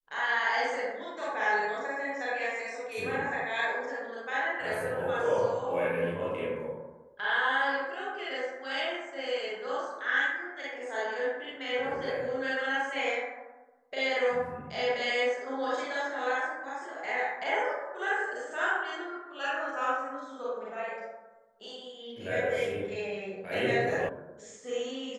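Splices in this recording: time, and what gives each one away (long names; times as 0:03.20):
0:24.09: cut off before it has died away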